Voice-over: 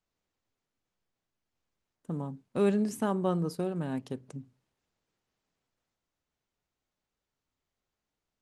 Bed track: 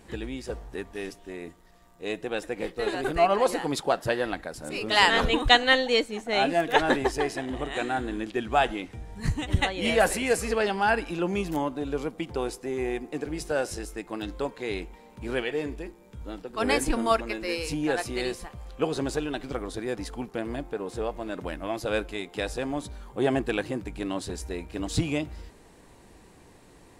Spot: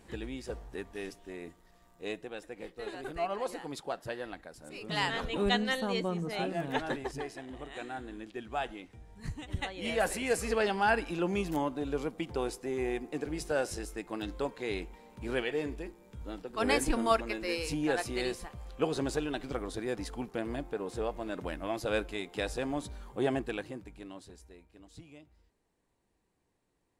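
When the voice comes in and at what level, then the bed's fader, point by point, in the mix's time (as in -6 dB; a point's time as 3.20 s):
2.80 s, -5.0 dB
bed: 2.07 s -5 dB
2.33 s -12 dB
9.53 s -12 dB
10.55 s -3.5 dB
23.10 s -3.5 dB
24.93 s -25 dB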